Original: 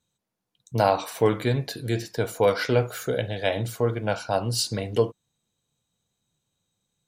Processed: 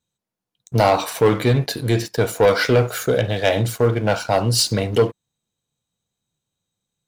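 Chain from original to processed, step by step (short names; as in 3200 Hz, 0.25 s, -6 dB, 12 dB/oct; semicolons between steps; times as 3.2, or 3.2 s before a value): sample leveller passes 2; gain +1 dB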